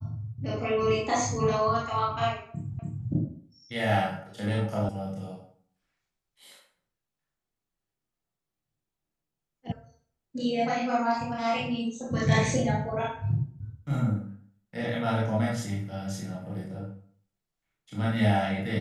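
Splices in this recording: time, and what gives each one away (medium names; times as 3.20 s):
2.79 s: repeat of the last 0.28 s
4.89 s: sound stops dead
9.72 s: sound stops dead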